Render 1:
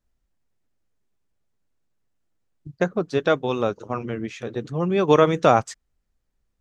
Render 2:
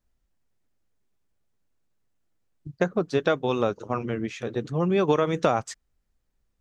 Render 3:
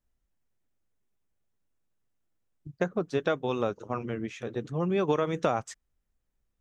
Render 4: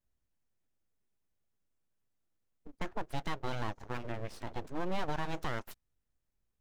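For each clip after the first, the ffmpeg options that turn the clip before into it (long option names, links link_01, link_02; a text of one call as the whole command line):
ffmpeg -i in.wav -af "acompressor=threshold=-17dB:ratio=10" out.wav
ffmpeg -i in.wav -af "equalizer=frequency=4500:width_type=o:width=0.37:gain=-4.5,volume=-4.5dB" out.wav
ffmpeg -i in.wav -af "alimiter=limit=-19dB:level=0:latency=1:release=30,aeval=exprs='abs(val(0))':channel_layout=same,volume=-3.5dB" out.wav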